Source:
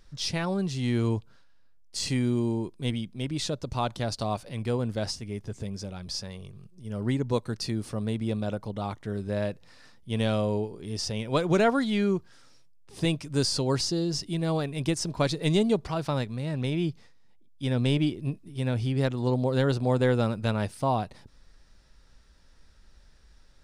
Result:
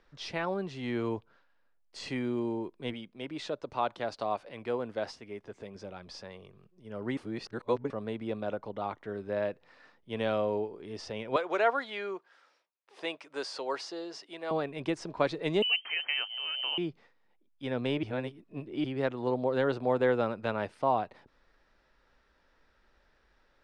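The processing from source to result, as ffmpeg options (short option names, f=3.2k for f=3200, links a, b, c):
-filter_complex "[0:a]asettb=1/sr,asplit=3[a][b][c];[a]atrim=end=2.934[d];[b]atrim=start=2.93:end=5.75,asetpts=PTS-STARTPTS,afade=t=in:d=0.004:c=qsin,afade=t=out:st=2.816:d=0.004:c=qsin,lowshelf=f=170:g=-7.5[e];[c]atrim=start=5.746[f];[d][e]acrossfade=d=0.004:c1=hsin:c2=qsin[g];[g][f]acrossfade=d=0.004:c1=qsin:c2=hsin,asettb=1/sr,asplit=3[h][i][j];[h]atrim=end=11.364[k];[i]atrim=start=11.36:end=14.51,asetpts=PTS-STARTPTS,afade=t=in:d=0.004:c=qsin,afade=t=out:st=3.146:d=0.004:c=qsin,highpass=550[l];[j]atrim=start=14.506[m];[k][l]acrossfade=d=0.004:c1=hsin:c2=qsin[n];[n][m]acrossfade=d=0.004:c1=qsin:c2=hsin,asettb=1/sr,asplit=3[o][p][q];[o]atrim=end=15.624[r];[p]atrim=start=15.62:end=16.78,asetpts=PTS-STARTPTS,afade=t=in:d=0.004:c=qsin,afade=t=out:st=1.156:d=0.004:c=qsin,lowpass=f=2.7k:t=q:w=0.5098,lowpass=f=2.7k:t=q:w=0.6013,lowpass=f=2.7k:t=q:w=0.9,lowpass=f=2.7k:t=q:w=2.563,afreqshift=-3200[s];[q]atrim=start=16.776[t];[r][s]acrossfade=d=0.004:c1=hsin:c2=qsin[u];[u][t]acrossfade=d=0.004:c1=qsin:c2=hsin,asplit=5[v][w][x][y][z];[v]atrim=end=7.172[aa];[w]atrim=start=7.168:end=7.902,asetpts=PTS-STARTPTS,areverse[ab];[x]atrim=start=7.898:end=18.032[ac];[y]atrim=start=18.028:end=18.842,asetpts=PTS-STARTPTS,areverse[ad];[z]atrim=start=18.838[ae];[aa][ab]acrossfade=d=0.004:c1=hsin:c2=hsin[af];[af][ac]acrossfade=d=0.004:c1=hsin:c2=hsin[ag];[ag][ad]acrossfade=d=0.004:c1=hsin:c2=hsin[ah];[ah][ae]acrossfade=d=0.004:c1=hsin:c2=hsin,lowpass=7.7k,acrossover=split=290 2900:gain=0.178 1 0.158[ai][aj][ak];[ai][aj][ak]amix=inputs=3:normalize=0"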